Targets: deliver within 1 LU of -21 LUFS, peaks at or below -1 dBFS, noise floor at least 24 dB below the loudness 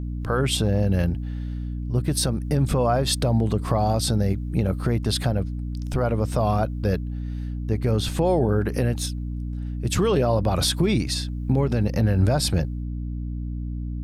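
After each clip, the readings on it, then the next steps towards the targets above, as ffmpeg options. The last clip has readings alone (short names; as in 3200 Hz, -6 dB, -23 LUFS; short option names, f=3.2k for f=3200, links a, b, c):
hum 60 Hz; harmonics up to 300 Hz; hum level -27 dBFS; loudness -24.0 LUFS; peak -10.0 dBFS; loudness target -21.0 LUFS
-> -af "bandreject=f=60:t=h:w=6,bandreject=f=120:t=h:w=6,bandreject=f=180:t=h:w=6,bandreject=f=240:t=h:w=6,bandreject=f=300:t=h:w=6"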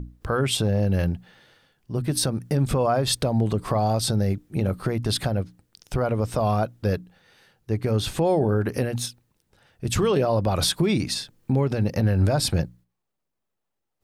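hum none; loudness -24.0 LUFS; peak -10.5 dBFS; loudness target -21.0 LUFS
-> -af "volume=3dB"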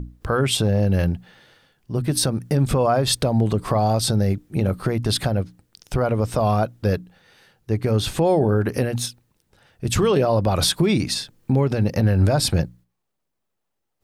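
loudness -21.0 LUFS; peak -7.5 dBFS; noise floor -77 dBFS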